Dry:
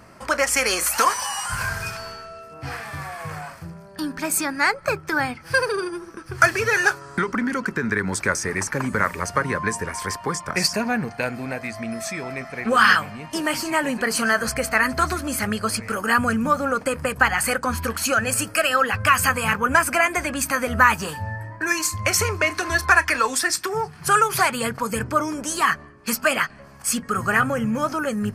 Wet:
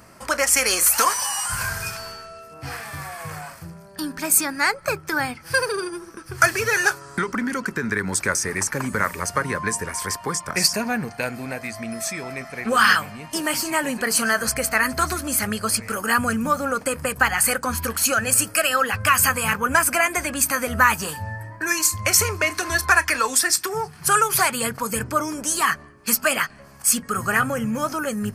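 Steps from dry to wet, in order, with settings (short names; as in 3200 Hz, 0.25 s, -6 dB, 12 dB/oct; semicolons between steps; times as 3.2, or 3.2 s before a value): high shelf 6200 Hz +10.5 dB; gain -1.5 dB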